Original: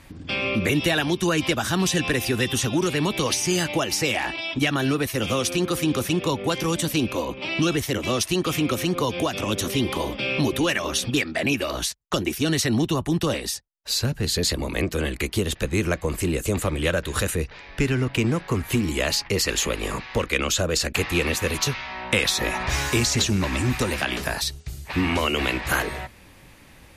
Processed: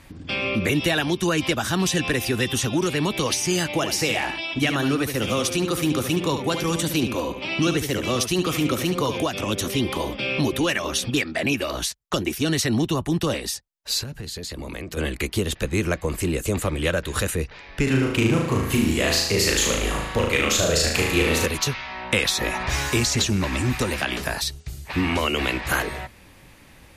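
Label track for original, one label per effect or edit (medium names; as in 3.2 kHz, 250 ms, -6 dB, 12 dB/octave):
3.700000	9.200000	delay 72 ms -8 dB
14.030000	14.970000	compression 10:1, threshold -29 dBFS
17.830000	21.460000	flutter echo walls apart 6.4 m, dies away in 0.78 s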